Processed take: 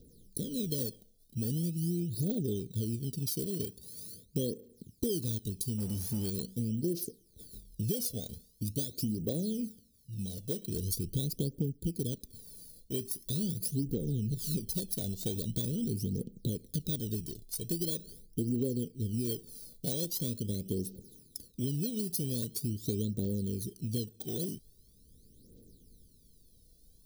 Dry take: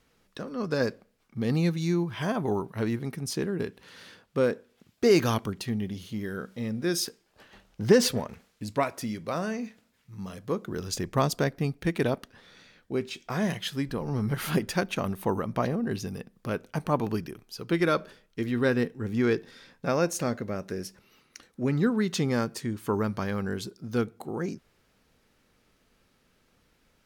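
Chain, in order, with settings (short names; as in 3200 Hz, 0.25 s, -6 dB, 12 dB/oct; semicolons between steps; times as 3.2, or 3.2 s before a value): FFT order left unsorted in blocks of 16 samples; Chebyshev band-stop 460–3800 Hz, order 3; phaser 0.43 Hz, delay 1.5 ms, feedback 74%; 5.78–6.3 power-law curve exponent 0.7; compressor 6:1, threshold -32 dBFS, peak gain reduction 18.5 dB; gain +1.5 dB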